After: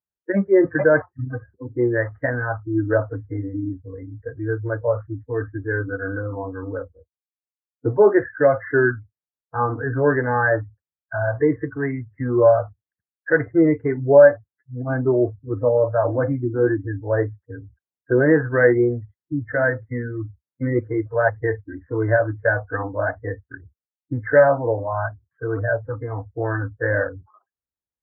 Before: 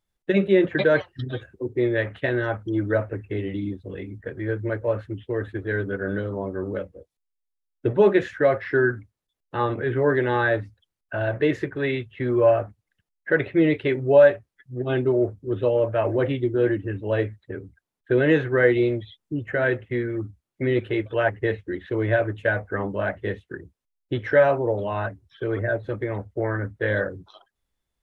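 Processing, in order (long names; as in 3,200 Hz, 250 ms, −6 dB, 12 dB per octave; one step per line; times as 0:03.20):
Butterworth low-pass 1,900 Hz 72 dB per octave
noise reduction from a noise print of the clip's start 19 dB
high-pass filter 63 Hz
level +3.5 dB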